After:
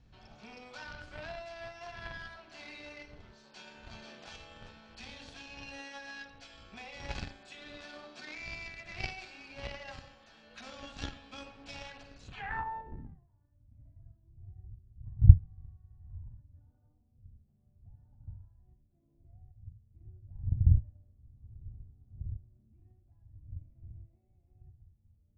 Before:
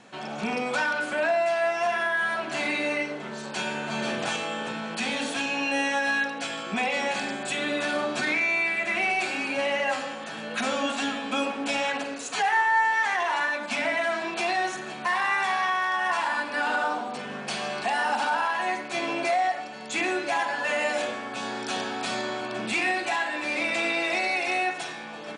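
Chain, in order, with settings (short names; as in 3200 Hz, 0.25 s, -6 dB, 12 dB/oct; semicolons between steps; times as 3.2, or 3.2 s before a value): wind noise 91 Hz -29 dBFS; added harmonics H 4 -9 dB, 6 -16 dB, 7 -18 dB, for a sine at 0.5 dBFS; low-pass sweep 5100 Hz -> 100 Hz, 12.2–13.29; gain -6 dB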